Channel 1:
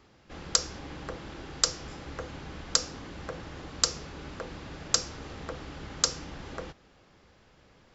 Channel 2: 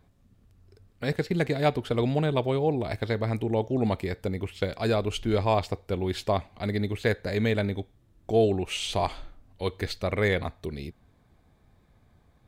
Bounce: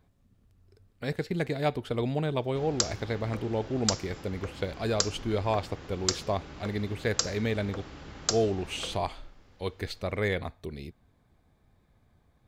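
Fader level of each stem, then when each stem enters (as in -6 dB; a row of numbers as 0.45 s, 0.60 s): -3.0 dB, -4.0 dB; 2.25 s, 0.00 s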